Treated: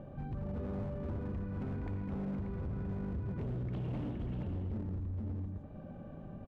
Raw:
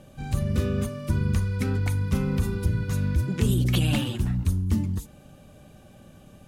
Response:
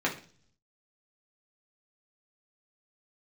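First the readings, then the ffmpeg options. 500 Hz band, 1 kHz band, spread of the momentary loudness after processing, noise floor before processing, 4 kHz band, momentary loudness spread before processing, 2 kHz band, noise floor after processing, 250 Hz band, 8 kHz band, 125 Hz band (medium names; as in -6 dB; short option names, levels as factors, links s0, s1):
-10.0 dB, -10.0 dB, 6 LU, -51 dBFS, under -25 dB, 5 LU, -19.5 dB, -49 dBFS, -11.0 dB, under -35 dB, -13.5 dB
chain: -filter_complex "[0:a]lowpass=1100,aecho=1:1:57|125|163|469|586:0.224|0.2|0.126|0.501|0.376,asplit=2[s0][s1];[1:a]atrim=start_sample=2205,adelay=79[s2];[s1][s2]afir=irnorm=-1:irlink=0,volume=0.141[s3];[s0][s3]amix=inputs=2:normalize=0,acompressor=threshold=0.00447:ratio=2,asoftclip=type=hard:threshold=0.0141,volume=1.33"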